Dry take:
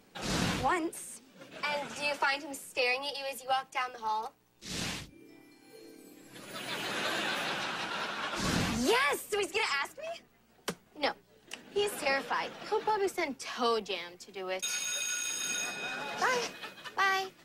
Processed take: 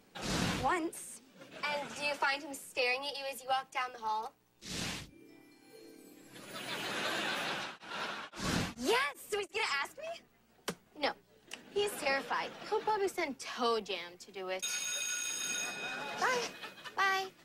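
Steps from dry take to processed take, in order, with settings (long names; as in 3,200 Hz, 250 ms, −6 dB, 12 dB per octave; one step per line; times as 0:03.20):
0:07.45–0:09.63: tremolo along a rectified sine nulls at 1.6 Hz → 3.2 Hz
level −2.5 dB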